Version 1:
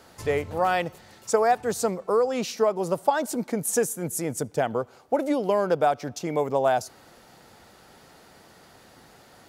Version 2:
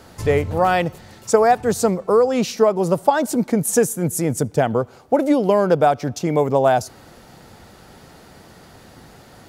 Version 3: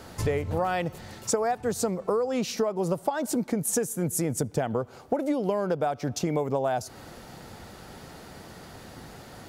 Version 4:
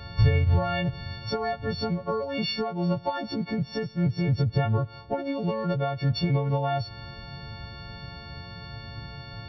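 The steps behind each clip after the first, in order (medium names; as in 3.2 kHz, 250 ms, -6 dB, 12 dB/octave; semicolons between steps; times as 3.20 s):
bass shelf 250 Hz +9 dB; trim +5 dB
compression 6:1, threshold -24 dBFS, peak gain reduction 14.5 dB
partials quantised in pitch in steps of 4 st; resampled via 11.025 kHz; resonant low shelf 180 Hz +13 dB, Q 1.5; trim -2 dB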